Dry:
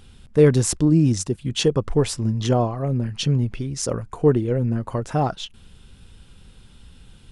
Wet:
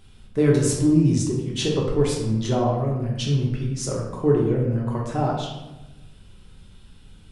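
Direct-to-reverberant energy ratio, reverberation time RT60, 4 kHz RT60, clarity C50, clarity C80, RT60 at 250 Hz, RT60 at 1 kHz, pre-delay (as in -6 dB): -3.0 dB, 1.1 s, 0.65 s, 2.5 dB, 5.0 dB, 1.3 s, 1.0 s, 3 ms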